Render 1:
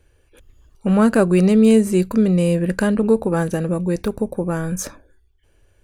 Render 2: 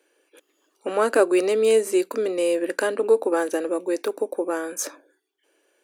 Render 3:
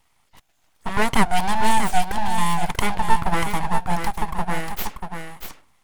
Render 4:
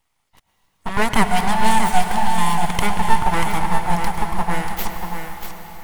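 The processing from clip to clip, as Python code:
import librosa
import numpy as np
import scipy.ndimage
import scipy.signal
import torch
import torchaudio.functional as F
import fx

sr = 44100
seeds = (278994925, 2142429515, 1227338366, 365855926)

y1 = scipy.signal.sosfilt(scipy.signal.cheby1(5, 1.0, 290.0, 'highpass', fs=sr, output='sos'), x)
y2 = np.abs(y1)
y2 = y2 + 10.0 ** (-7.0 / 20.0) * np.pad(y2, (int(638 * sr / 1000.0), 0))[:len(y2)]
y2 = y2 * 10.0 ** (3.5 / 20.0)
y3 = fx.law_mismatch(y2, sr, coded='A')
y3 = fx.rev_plate(y3, sr, seeds[0], rt60_s=5.0, hf_ratio=0.85, predelay_ms=90, drr_db=5.5)
y3 = y3 * 10.0 ** (1.5 / 20.0)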